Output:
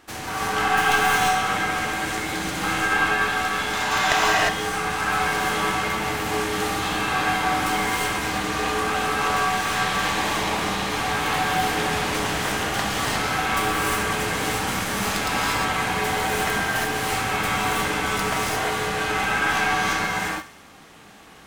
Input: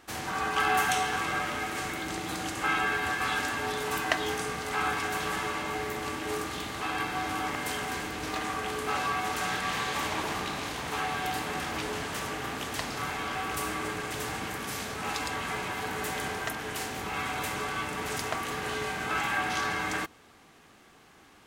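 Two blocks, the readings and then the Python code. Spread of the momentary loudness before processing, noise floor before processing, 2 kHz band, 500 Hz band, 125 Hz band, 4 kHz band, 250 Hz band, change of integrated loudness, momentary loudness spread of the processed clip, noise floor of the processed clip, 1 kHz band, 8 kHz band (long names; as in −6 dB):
6 LU, −57 dBFS, +9.0 dB, +8.0 dB, +9.0 dB, +9.0 dB, +8.0 dB, +8.5 dB, 5 LU, −44 dBFS, +9.0 dB, +8.5 dB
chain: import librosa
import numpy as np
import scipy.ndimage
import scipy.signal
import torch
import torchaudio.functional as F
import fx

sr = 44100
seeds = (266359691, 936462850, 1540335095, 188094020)

p1 = fx.tracing_dist(x, sr, depth_ms=0.056)
p2 = fx.spec_box(p1, sr, start_s=3.73, length_s=0.39, low_hz=570.0, high_hz=7600.0, gain_db=9)
p3 = p2 + fx.echo_thinned(p2, sr, ms=68, feedback_pct=64, hz=1000.0, wet_db=-15.5, dry=0)
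p4 = fx.rev_gated(p3, sr, seeds[0], gate_ms=380, shape='rising', drr_db=-5.0)
p5 = fx.rider(p4, sr, range_db=3, speed_s=2.0)
y = p5 * librosa.db_to_amplitude(1.5)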